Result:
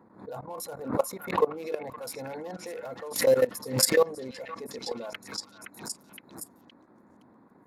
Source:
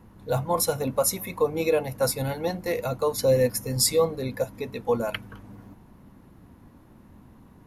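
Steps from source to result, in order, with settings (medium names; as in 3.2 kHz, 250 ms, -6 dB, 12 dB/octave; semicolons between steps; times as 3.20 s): local Wiener filter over 15 samples; high-pass 290 Hz 12 dB/octave; level held to a coarse grid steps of 20 dB; repeats whose band climbs or falls 517 ms, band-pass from 1.7 kHz, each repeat 0.7 oct, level -3 dB; swell ahead of each attack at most 120 dB/s; trim +2.5 dB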